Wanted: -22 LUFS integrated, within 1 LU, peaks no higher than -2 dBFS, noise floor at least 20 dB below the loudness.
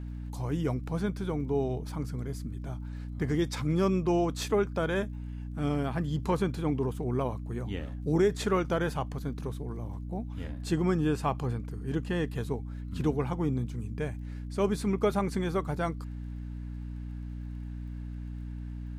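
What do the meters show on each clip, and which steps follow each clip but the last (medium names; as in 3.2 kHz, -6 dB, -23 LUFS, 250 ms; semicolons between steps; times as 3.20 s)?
tick rate 23 per s; hum 60 Hz; highest harmonic 300 Hz; hum level -36 dBFS; loudness -32.0 LUFS; peak level -14.0 dBFS; loudness target -22.0 LUFS
-> de-click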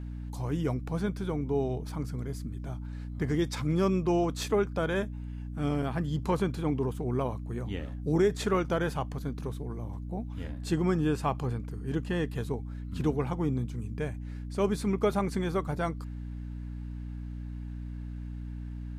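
tick rate 0 per s; hum 60 Hz; highest harmonic 300 Hz; hum level -36 dBFS
-> de-hum 60 Hz, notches 5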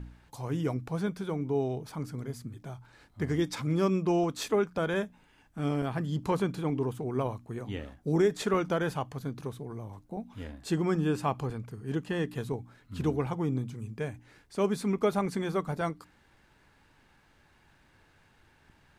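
hum not found; loudness -32.0 LUFS; peak level -14.5 dBFS; loudness target -22.0 LUFS
-> trim +10 dB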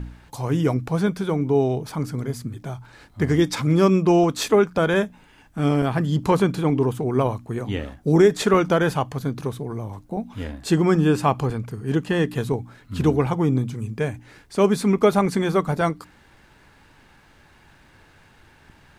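loudness -22.0 LUFS; peak level -4.5 dBFS; noise floor -54 dBFS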